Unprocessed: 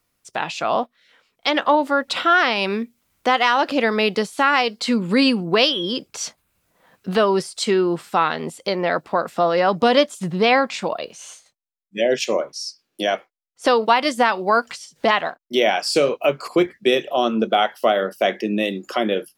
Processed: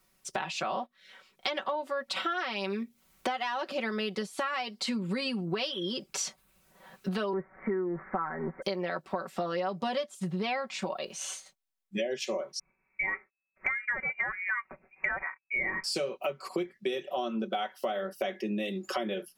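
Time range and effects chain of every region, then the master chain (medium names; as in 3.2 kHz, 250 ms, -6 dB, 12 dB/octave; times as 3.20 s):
7.33–8.62 s: jump at every zero crossing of -29.5 dBFS + steep low-pass 2.1 kHz 96 dB/octave
12.59–15.84 s: peaking EQ 280 Hz +7 dB 0.24 oct + frequency inversion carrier 2.6 kHz
whole clip: comb 5.3 ms, depth 82%; compression 6:1, threshold -31 dBFS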